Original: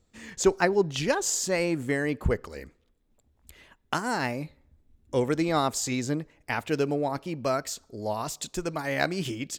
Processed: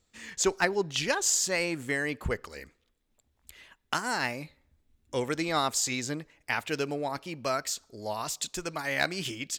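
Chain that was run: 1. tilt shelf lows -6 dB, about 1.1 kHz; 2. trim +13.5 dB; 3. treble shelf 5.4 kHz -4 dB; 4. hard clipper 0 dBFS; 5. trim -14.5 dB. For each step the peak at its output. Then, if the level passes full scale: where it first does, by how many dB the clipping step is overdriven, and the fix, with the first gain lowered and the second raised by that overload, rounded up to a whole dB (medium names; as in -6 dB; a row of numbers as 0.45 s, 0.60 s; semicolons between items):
-7.0 dBFS, +6.5 dBFS, +5.5 dBFS, 0.0 dBFS, -14.5 dBFS; step 2, 5.5 dB; step 2 +7.5 dB, step 5 -8.5 dB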